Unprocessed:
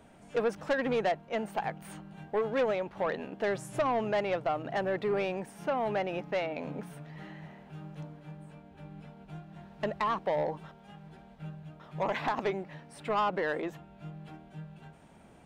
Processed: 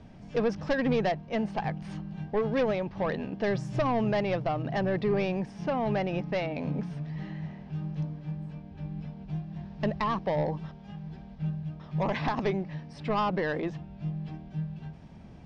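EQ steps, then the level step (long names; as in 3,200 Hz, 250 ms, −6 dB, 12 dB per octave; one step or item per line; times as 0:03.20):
low-pass with resonance 5,300 Hz, resonance Q 3.7
bass and treble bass +13 dB, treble −7 dB
notch filter 1,400 Hz, Q 13
0.0 dB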